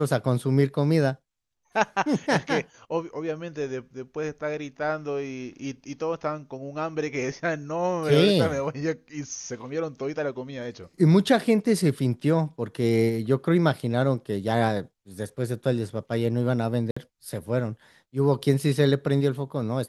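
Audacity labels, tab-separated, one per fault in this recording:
16.910000	16.960000	drop-out 55 ms

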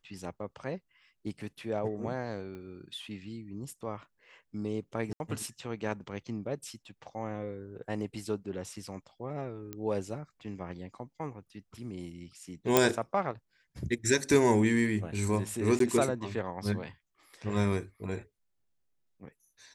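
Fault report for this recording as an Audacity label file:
2.550000	2.550000	click −33 dBFS
5.130000	5.200000	drop-out 71 ms
9.730000	9.730000	click −23 dBFS
12.770000	12.770000	click
15.790000	15.800000	drop-out 13 ms

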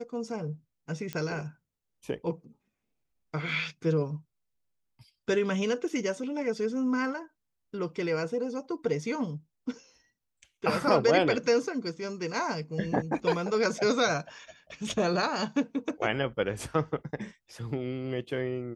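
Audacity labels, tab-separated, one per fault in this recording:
1.130000	1.130000	click −18 dBFS

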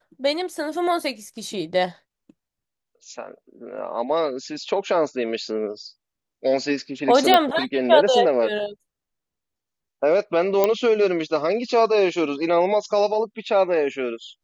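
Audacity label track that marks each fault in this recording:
7.340000	7.340000	click −3 dBFS
10.640000	10.640000	click −5 dBFS

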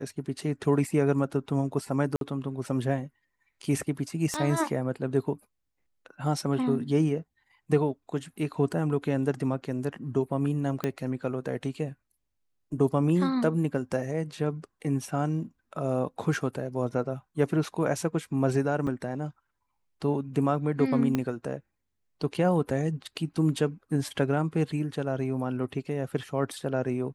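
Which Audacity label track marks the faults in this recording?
2.160000	2.210000	drop-out 52 ms
4.340000	4.340000	click −16 dBFS
10.840000	10.840000	click −15 dBFS
18.870000	18.870000	drop-out 3.7 ms
21.150000	21.150000	click −14 dBFS

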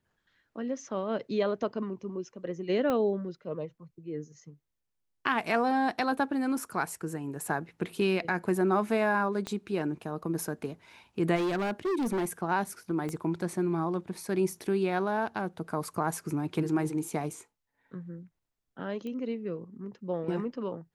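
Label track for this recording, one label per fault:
2.900000	2.900000	click −17 dBFS
9.470000	9.470000	click −20 dBFS
11.350000	12.310000	clipping −26.5 dBFS
13.090000	13.090000	click −23 dBFS
19.070000	19.070000	click −28 dBFS

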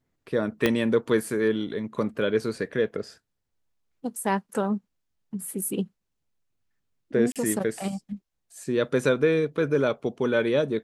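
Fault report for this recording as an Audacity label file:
0.660000	0.660000	click −8 dBFS
7.320000	7.360000	drop-out 37 ms

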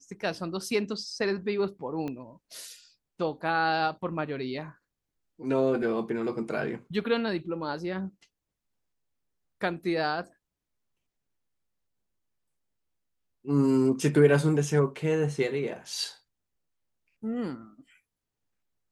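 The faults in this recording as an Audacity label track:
2.080000	2.080000	click −23 dBFS

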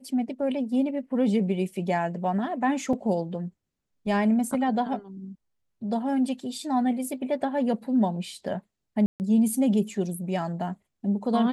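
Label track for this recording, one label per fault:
2.930000	2.930000	drop-out 3.2 ms
9.060000	9.200000	drop-out 139 ms

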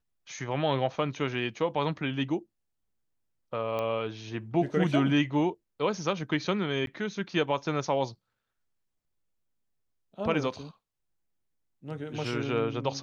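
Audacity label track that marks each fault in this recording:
3.790000	3.790000	click −20 dBFS
6.860000	6.870000	drop-out 12 ms

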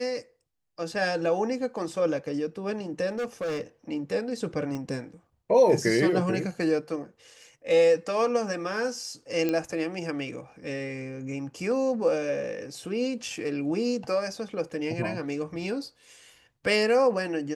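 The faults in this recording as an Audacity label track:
3.090000	3.610000	clipping −27 dBFS
4.750000	4.750000	click −22 dBFS
9.490000	9.490000	click −15 dBFS

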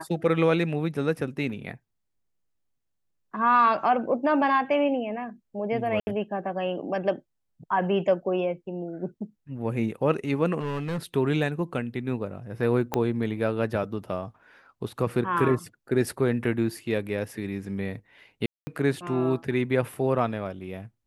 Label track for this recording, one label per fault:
6.000000	6.070000	drop-out 70 ms
10.590000	10.980000	clipping −26 dBFS
12.940000	12.940000	click −11 dBFS
18.460000	18.670000	drop-out 210 ms

